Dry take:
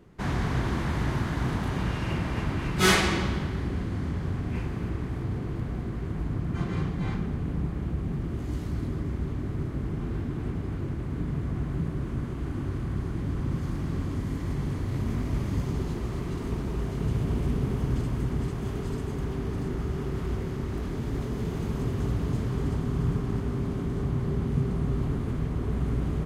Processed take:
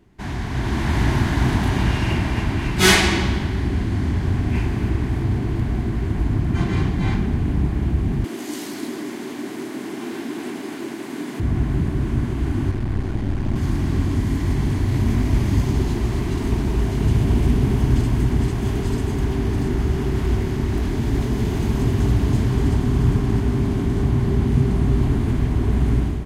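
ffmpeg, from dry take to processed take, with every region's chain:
ffmpeg -i in.wav -filter_complex "[0:a]asettb=1/sr,asplit=3[link_01][link_02][link_03];[link_01]atrim=end=8.244[link_04];[link_02]atrim=start=8.24:end=11.4,asetpts=PTS-STARTPTS,afade=type=in:duration=0.004:curve=qsin,afade=type=out:start_time=3.156:duration=0.004:curve=qsin,highpass=frequency=260:width=0.5412,highpass=frequency=260:width=1.3066,highshelf=frequency=3500:gain=10[link_05];[link_03]atrim=start=11.396[link_06];[link_04][link_05]acrossfade=duration=0.004:curve1=hsin:curve2=qsin[link_07];[link_07][link_06]acrossfade=duration=0.004:curve1=qsin:curve2=hsin,asettb=1/sr,asplit=3[link_08][link_09][link_10];[link_08]atrim=end=12.714[link_11];[link_09]atrim=start=12.71:end=13.56,asetpts=PTS-STARTPTS,afade=type=in:duration=0.004:curve=qsin,afade=type=out:start_time=0.846:duration=0.004:curve=qsin,highshelf=frequency=7200:gain=-7,aeval=exprs='clip(val(0),-1,0.0112)':channel_layout=same[link_12];[link_10]atrim=start=13.556[link_13];[link_11][link_12]acrossfade=duration=0.004:curve1=hsin:curve2=qsin[link_14];[link_14][link_13]acrossfade=duration=0.004:curve1=qsin:curve2=hsin,equalizer=frequency=160:width_type=o:width=0.33:gain=-8,equalizer=frequency=500:width_type=o:width=0.33:gain=-12,equalizer=frequency=1250:width_type=o:width=0.33:gain=-8,dynaudnorm=framelen=490:gausssize=3:maxgain=10dB,volume=1dB" out.wav

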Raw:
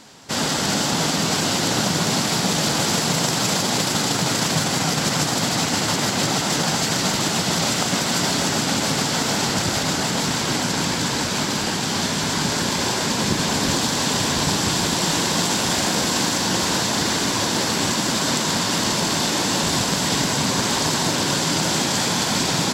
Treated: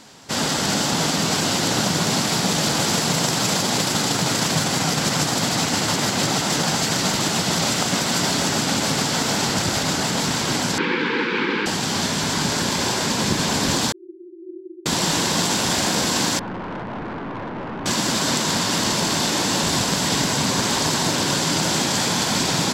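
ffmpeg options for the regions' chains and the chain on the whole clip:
ffmpeg -i in.wav -filter_complex "[0:a]asettb=1/sr,asplit=3[link_01][link_02][link_03];[link_01]atrim=end=10.784[link_04];[link_02]atrim=start=10.78:end=11.66,asetpts=PTS-STARTPTS,afade=type=in:duration=0.004:curve=qsin,afade=type=out:start_time=0.876:duration=0.004:curve=qsin,asuperstop=centerf=650:order=8:qfactor=2,highpass=frequency=190:width=0.5412,highpass=frequency=190:width=1.3066,equalizer=frequency=350:width_type=q:width=4:gain=7,equalizer=frequency=500:width_type=q:width=4:gain=9,equalizer=frequency=1600:width_type=q:width=4:gain=6,equalizer=frequency=2300:width_type=q:width=4:gain=8,lowpass=frequency=3400:width=0.5412,lowpass=frequency=3400:width=1.3066[link_05];[link_03]atrim=start=11.656[link_06];[link_04][link_05]acrossfade=duration=0.004:curve1=hsin:curve2=qsin[link_07];[link_07][link_06]acrossfade=duration=0.004:curve1=qsin:curve2=hsin,asettb=1/sr,asplit=3[link_08][link_09][link_10];[link_08]atrim=end=13.924[link_11];[link_09]atrim=start=13.92:end=14.86,asetpts=PTS-STARTPTS,afade=type=in:duration=0.004:curve=qsin,afade=type=out:start_time=0.936:duration=0.004:curve=qsin,aeval=exprs='abs(val(0))':channel_layout=same,asuperpass=centerf=350:order=12:qfactor=5.9,acontrast=20[link_12];[link_10]atrim=start=14.856[link_13];[link_11][link_12]acrossfade=duration=0.004:curve1=hsin:curve2=qsin[link_14];[link_14][link_13]acrossfade=duration=0.004:curve1=qsin:curve2=hsin,asettb=1/sr,asplit=3[link_15][link_16][link_17];[link_15]atrim=end=16.394[link_18];[link_16]atrim=start=16.39:end=17.86,asetpts=PTS-STARTPTS,afade=type=in:duration=0.004:curve=qsin,afade=type=out:start_time=1.466:duration=0.004:curve=qsin,lowpass=frequency=1500:width=0.5412,lowpass=frequency=1500:width=1.3066,aeval=exprs='(tanh(22.4*val(0)+0.25)-tanh(0.25))/22.4':channel_layout=same[link_19];[link_17]atrim=start=17.856[link_20];[link_18][link_19]acrossfade=duration=0.004:curve1=hsin:curve2=qsin[link_21];[link_21][link_20]acrossfade=duration=0.004:curve1=qsin:curve2=hsin" out.wav

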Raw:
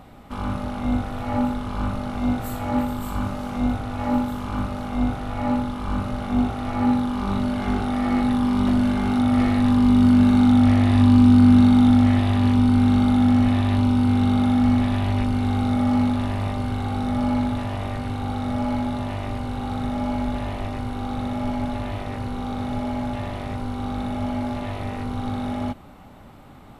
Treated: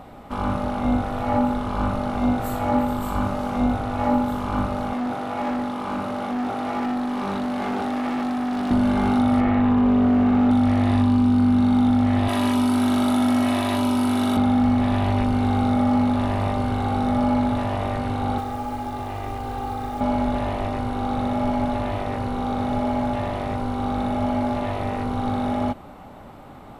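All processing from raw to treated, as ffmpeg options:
ffmpeg -i in.wav -filter_complex "[0:a]asettb=1/sr,asplit=3[link_01][link_02][link_03];[link_01]atrim=end=4.934[link_04];[link_02]atrim=start=4.93:end=8.71,asetpts=PTS-STARTPTS,afade=type=in:duration=0.004:curve=qsin,afade=type=out:start_time=3.776:duration=0.004:curve=qsin,highpass=190,asoftclip=type=hard:threshold=-26.5dB[link_05];[link_03]atrim=start=8.706[link_06];[link_04][link_05]acrossfade=duration=0.004:curve1=hsin:curve2=qsin[link_07];[link_07][link_06]acrossfade=duration=0.004:curve1=qsin:curve2=hsin,asettb=1/sr,asplit=3[link_08][link_09][link_10];[link_08]atrim=end=9.404[link_11];[link_09]atrim=start=9.4:end=10.51,asetpts=PTS-STARTPTS,afade=type=in:duration=0.004:curve=qsin,afade=type=out:start_time=1.106:duration=0.004:curve=qsin,lowpass=frequency=3000:width=0.5412,lowpass=frequency=3000:width=1.3066,asoftclip=type=hard:threshold=-13.5dB[link_12];[link_10]atrim=start=10.506[link_13];[link_11][link_12]acrossfade=duration=0.004:curve1=hsin:curve2=qsin[link_14];[link_14][link_13]acrossfade=duration=0.004:curve1=qsin:curve2=hsin,asettb=1/sr,asplit=3[link_15][link_16][link_17];[link_15]atrim=end=12.284[link_18];[link_16]atrim=start=12.28:end=14.37,asetpts=PTS-STARTPTS,afade=type=in:duration=0.004:curve=qsin,afade=type=out:start_time=2.086:duration=0.004:curve=qsin,highpass=63,aemphasis=mode=production:type=bsi,aecho=1:1:3.1:0.48,atrim=end_sample=92169[link_19];[link_17]atrim=start=14.366[link_20];[link_18][link_19]acrossfade=duration=0.004:curve1=hsin:curve2=qsin[link_21];[link_21][link_20]acrossfade=duration=0.004:curve1=qsin:curve2=hsin,asettb=1/sr,asplit=3[link_22][link_23][link_24];[link_22]atrim=end=18.384[link_25];[link_23]atrim=start=18.38:end=20.01,asetpts=PTS-STARTPTS,afade=type=in:duration=0.004:curve=qsin,afade=type=out:start_time=1.626:duration=0.004:curve=qsin,acrusher=bits=5:mode=log:mix=0:aa=0.000001,acrossover=split=470|3600[link_26][link_27][link_28];[link_26]acompressor=threshold=-32dB:ratio=4[link_29];[link_27]acompressor=threshold=-38dB:ratio=4[link_30];[link_28]acompressor=threshold=-53dB:ratio=4[link_31];[link_29][link_30][link_31]amix=inputs=3:normalize=0,aecho=1:1:2.5:0.55,atrim=end_sample=71883[link_32];[link_24]atrim=start=20.006[link_33];[link_25][link_32]acrossfade=duration=0.004:curve1=hsin:curve2=qsin[link_34];[link_34][link_33]acrossfade=duration=0.004:curve1=qsin:curve2=hsin,equalizer=frequency=650:width_type=o:width=2.4:gain=6.5,acompressor=threshold=-15dB:ratio=6" out.wav

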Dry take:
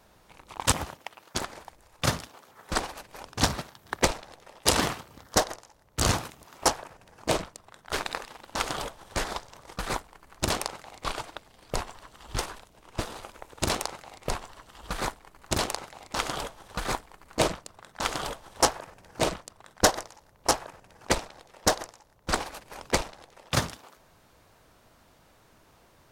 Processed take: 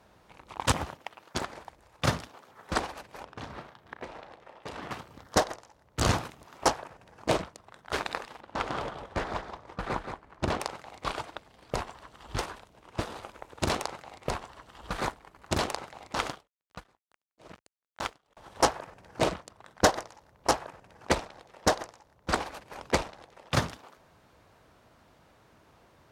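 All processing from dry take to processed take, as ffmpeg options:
ffmpeg -i in.wav -filter_complex "[0:a]asettb=1/sr,asplit=3[link_01][link_02][link_03];[link_01]atrim=end=3.244[link_04];[link_02]atrim=start=3.24:end=4.91,asetpts=PTS-STARTPTS,afade=type=in:duration=0.004:curve=qsin,afade=type=out:start_time=1.666:duration=0.004:curve=qsin,bass=frequency=250:gain=-4,treble=frequency=4000:gain=-11,acompressor=threshold=-36dB:ratio=12:attack=3.2:release=140:knee=1:detection=peak,asplit=2[link_05][link_06];[link_06]adelay=35,volume=-11dB[link_07];[link_05][link_07]amix=inputs=2:normalize=0,atrim=end_sample=73647[link_08];[link_03]atrim=start=4.906[link_09];[link_04][link_08]acrossfade=duration=0.004:curve1=hsin:curve2=qsin[link_10];[link_10][link_09]acrossfade=duration=0.004:curve1=qsin:curve2=hsin,asettb=1/sr,asplit=3[link_11][link_12][link_13];[link_11]atrim=end=8.404[link_14];[link_12]atrim=start=8.4:end=10.6,asetpts=PTS-STARTPTS,afade=type=in:duration=0.004:curve=qsin,afade=type=out:start_time=2.196:duration=0.004:curve=qsin,lowpass=frequency=2100:poles=1,aecho=1:1:175:0.447,atrim=end_sample=97020[link_15];[link_13]atrim=start=10.596[link_16];[link_14][link_15]acrossfade=duration=0.004:curve1=hsin:curve2=qsin[link_17];[link_17][link_16]acrossfade=duration=0.004:curve1=qsin:curve2=hsin,asettb=1/sr,asplit=3[link_18][link_19][link_20];[link_18]atrim=end=16.284[link_21];[link_19]atrim=start=16.28:end=18.37,asetpts=PTS-STARTPTS,afade=type=in:duration=0.004:curve=qsin,afade=type=out:start_time=2.086:duration=0.004:curve=qsin,aeval=exprs='sgn(val(0))*max(abs(val(0))-0.0119,0)':channel_layout=same,aeval=exprs='val(0)*pow(10,-38*(0.5-0.5*cos(2*PI*2.3*n/s))/20)':channel_layout=same[link_22];[link_20]atrim=start=18.366[link_23];[link_21][link_22]acrossfade=duration=0.004:curve1=hsin:curve2=qsin[link_24];[link_24][link_23]acrossfade=duration=0.004:curve1=qsin:curve2=hsin,highpass=48,aemphasis=mode=reproduction:type=cd" out.wav

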